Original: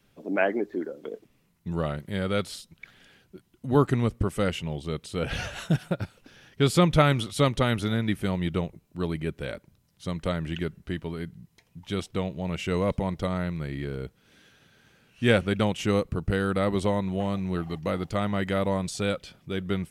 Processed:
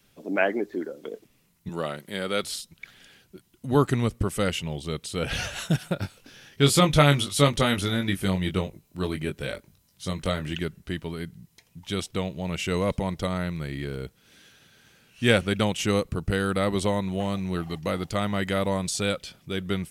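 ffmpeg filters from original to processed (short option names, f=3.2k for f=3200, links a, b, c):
-filter_complex "[0:a]asettb=1/sr,asplit=3[a][b][c];[a]atrim=end=1.694[d];[b]atrim=start=1.69:end=2.44,asetpts=PTS-STARTPTS,afade=t=in:d=0.004:c=qsin,afade=t=out:st=0.746:d=0.004:c=qsin,highpass=230[e];[c]atrim=start=2.436[f];[d][e]acrossfade=d=0.004:c1=hsin:c2=qsin[g];[g][f]acrossfade=d=0.004:c1=qsin:c2=hsin,asettb=1/sr,asplit=3[h][i][j];[h]atrim=end=5.944[k];[i]atrim=start=5.94:end=10.54,asetpts=PTS-STARTPTS,afade=t=in:d=0.004:c=qsin,afade=t=out:st=4.596:d=0.004:c=qsin,asplit=2[l][m];[m]adelay=21,volume=-6dB[n];[l][n]amix=inputs=2:normalize=0,atrim=end_sample=202860[o];[j]atrim=start=10.536[p];[k][o]acrossfade=d=0.004:c1=hsin:c2=qsin[q];[q][p]acrossfade=d=0.004:c1=qsin:c2=hsin,highshelf=f=3k:g=8.5"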